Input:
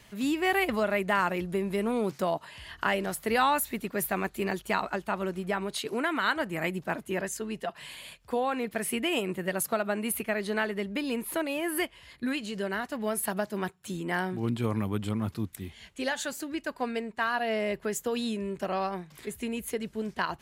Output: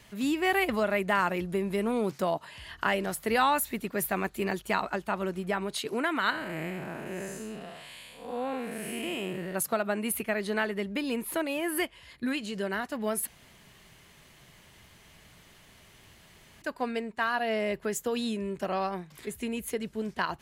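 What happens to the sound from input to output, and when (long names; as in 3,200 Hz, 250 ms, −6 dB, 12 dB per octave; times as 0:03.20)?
0:06.30–0:09.55: spectrum smeared in time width 228 ms
0:13.27–0:16.62: fill with room tone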